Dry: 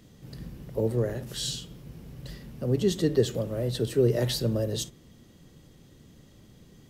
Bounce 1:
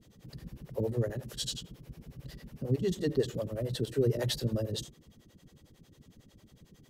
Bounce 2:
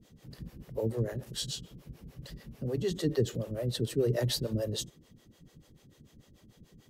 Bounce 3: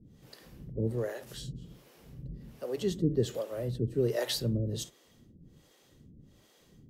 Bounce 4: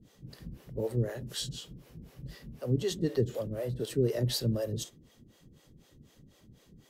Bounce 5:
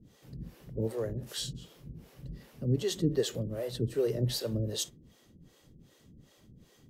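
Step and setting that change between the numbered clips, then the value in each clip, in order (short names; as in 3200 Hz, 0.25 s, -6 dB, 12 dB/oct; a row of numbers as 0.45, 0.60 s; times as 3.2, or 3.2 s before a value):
harmonic tremolo, rate: 11, 6.8, 1.3, 4, 2.6 Hz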